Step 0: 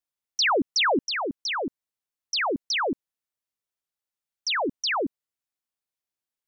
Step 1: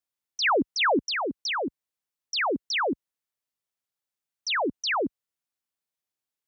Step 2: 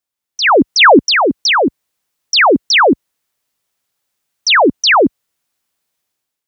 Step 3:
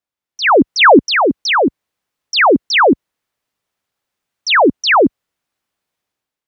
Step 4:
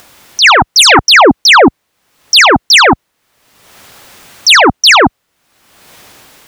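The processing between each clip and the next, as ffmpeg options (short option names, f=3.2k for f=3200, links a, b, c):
-filter_complex "[0:a]highpass=50,acrossover=split=140|2700[a][b][c];[c]alimiter=level_in=2.5dB:limit=-24dB:level=0:latency=1,volume=-2.5dB[d];[a][b][d]amix=inputs=3:normalize=0"
-af "dynaudnorm=f=150:g=7:m=11dB,volume=6dB"
-af "highshelf=f=4.5k:g=-11"
-af "aeval=exprs='0.891*sin(PI/2*3.16*val(0)/0.891)':c=same,acompressor=mode=upward:threshold=-16dB:ratio=2.5"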